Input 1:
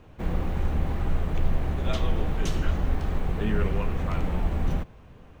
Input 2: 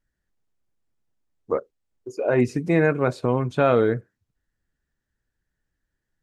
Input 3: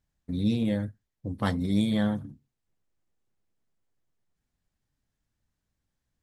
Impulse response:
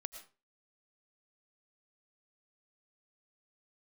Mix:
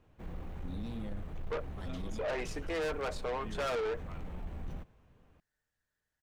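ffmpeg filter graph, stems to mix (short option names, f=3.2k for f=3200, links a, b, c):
-filter_complex "[0:a]volume=-14.5dB[a];[1:a]highpass=f=440:w=0.5412,highpass=f=440:w=1.3066,aecho=1:1:6.6:0.5,volume=-4dB,asplit=2[b][c];[2:a]alimiter=limit=-20.5dB:level=0:latency=1:release=40,adelay=350,volume=-11.5dB[d];[c]apad=whole_len=289765[e];[d][e]sidechaincompress=threshold=-50dB:ratio=8:attack=16:release=136[f];[a][b][f]amix=inputs=3:normalize=0,asoftclip=type=tanh:threshold=-31.5dB"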